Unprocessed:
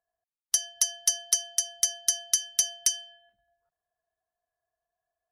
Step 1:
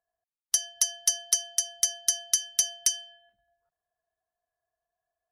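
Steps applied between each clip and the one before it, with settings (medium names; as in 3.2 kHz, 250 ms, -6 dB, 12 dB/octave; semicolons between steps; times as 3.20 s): no audible change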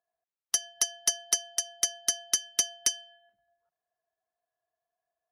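high-pass 210 Hz 6 dB/octave; treble shelf 3.2 kHz -12 dB; upward expansion 1.5:1, over -44 dBFS; trim +8 dB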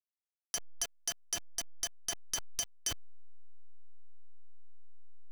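send-on-delta sampling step -29 dBFS; peak limiter -22.5 dBFS, peak gain reduction 11 dB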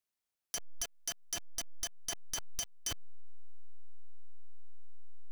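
compression, threshold -37 dBFS, peak gain reduction 7.5 dB; hard clipper -35.5 dBFS, distortion -16 dB; trim +5.5 dB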